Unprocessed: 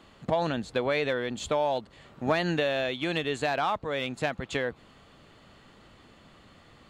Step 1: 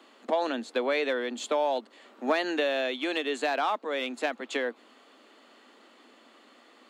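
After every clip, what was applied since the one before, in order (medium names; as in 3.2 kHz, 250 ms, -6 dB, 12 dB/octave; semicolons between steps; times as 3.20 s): steep high-pass 230 Hz 72 dB/octave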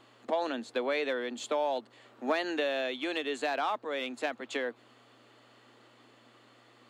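mains buzz 120 Hz, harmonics 15, -65 dBFS -4 dB/octave; trim -3.5 dB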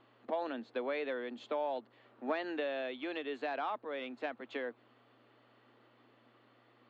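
distance through air 260 m; trim -4.5 dB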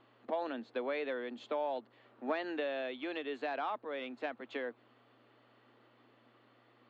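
no audible change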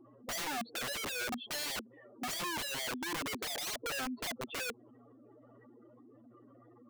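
spectral contrast enhancement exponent 3.7; integer overflow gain 40.5 dB; trim +7.5 dB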